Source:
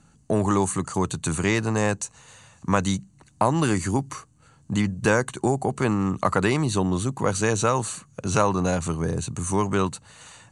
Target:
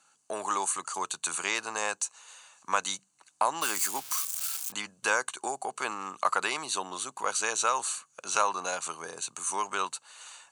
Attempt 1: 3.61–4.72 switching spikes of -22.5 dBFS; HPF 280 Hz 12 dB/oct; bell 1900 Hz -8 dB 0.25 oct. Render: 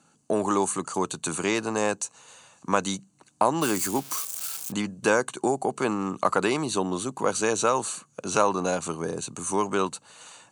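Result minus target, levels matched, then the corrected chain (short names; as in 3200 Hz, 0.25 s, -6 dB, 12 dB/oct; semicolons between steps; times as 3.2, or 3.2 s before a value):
250 Hz band +14.0 dB
3.61–4.72 switching spikes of -22.5 dBFS; HPF 960 Hz 12 dB/oct; bell 1900 Hz -8 dB 0.25 oct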